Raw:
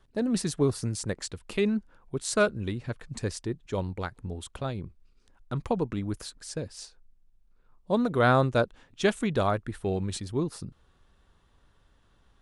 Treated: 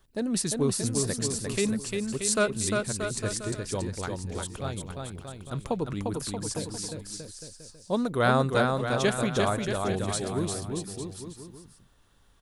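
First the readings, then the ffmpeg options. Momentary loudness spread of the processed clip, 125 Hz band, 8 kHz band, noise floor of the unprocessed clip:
14 LU, 0.0 dB, +8.5 dB, −64 dBFS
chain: -af "aemphasis=mode=production:type=50kf,aecho=1:1:350|630|854|1033|1177:0.631|0.398|0.251|0.158|0.1,volume=-2dB"

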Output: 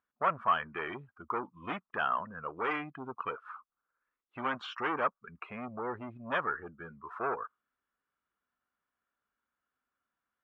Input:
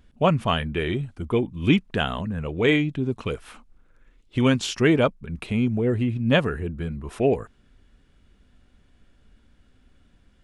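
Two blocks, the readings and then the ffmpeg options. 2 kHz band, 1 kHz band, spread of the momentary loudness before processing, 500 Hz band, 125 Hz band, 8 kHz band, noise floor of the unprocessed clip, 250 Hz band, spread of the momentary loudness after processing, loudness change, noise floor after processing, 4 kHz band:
−7.5 dB, −1.0 dB, 10 LU, −15.0 dB, −26.0 dB, below −30 dB, −60 dBFS, −20.5 dB, 15 LU, −11.5 dB, below −85 dBFS, −16.5 dB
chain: -af "aeval=exprs='(tanh(12.6*val(0)+0.2)-tanh(0.2))/12.6':channel_layout=same,bandpass=frequency=1200:width_type=q:width=3:csg=0,afftdn=noise_reduction=18:noise_floor=-52,volume=7dB"

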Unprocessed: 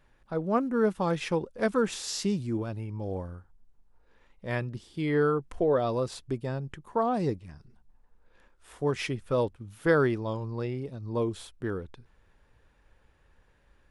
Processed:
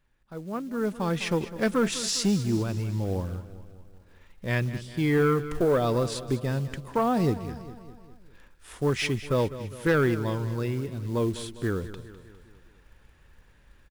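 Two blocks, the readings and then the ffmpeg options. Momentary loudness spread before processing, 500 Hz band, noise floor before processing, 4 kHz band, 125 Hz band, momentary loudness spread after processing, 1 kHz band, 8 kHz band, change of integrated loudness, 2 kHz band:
11 LU, +0.5 dB, −65 dBFS, +6.0 dB, +5.5 dB, 13 LU, +1.0 dB, +6.5 dB, +2.5 dB, +3.0 dB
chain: -af "equalizer=frequency=670:width=0.71:gain=-5.5,acrusher=bits=6:mode=log:mix=0:aa=0.000001,dynaudnorm=framelen=660:gausssize=3:maxgain=13.5dB,asoftclip=type=tanh:threshold=-9dB,aecho=1:1:203|406|609|812|1015:0.188|0.104|0.057|0.0313|0.0172,volume=-6dB"

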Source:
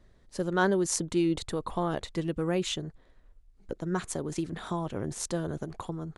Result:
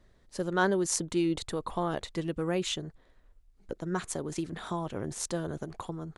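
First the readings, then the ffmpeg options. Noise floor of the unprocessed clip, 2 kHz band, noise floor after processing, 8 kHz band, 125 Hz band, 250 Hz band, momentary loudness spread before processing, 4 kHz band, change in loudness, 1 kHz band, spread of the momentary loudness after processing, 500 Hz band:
−60 dBFS, 0.0 dB, −63 dBFS, 0.0 dB, −2.5 dB, −2.0 dB, 11 LU, 0.0 dB, −1.5 dB, −0.5 dB, 12 LU, −1.5 dB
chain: -af "lowshelf=frequency=370:gain=-3"

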